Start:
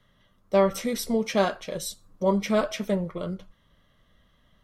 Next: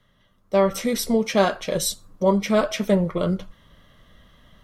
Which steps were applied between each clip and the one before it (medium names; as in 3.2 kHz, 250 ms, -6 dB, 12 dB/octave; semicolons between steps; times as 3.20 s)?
gain riding within 5 dB 0.5 s; trim +5 dB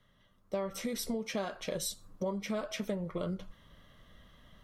compression 6:1, threshold -27 dBFS, peak gain reduction 14 dB; trim -5.5 dB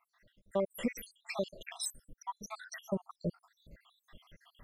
random holes in the spectrogram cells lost 79%; trim +4.5 dB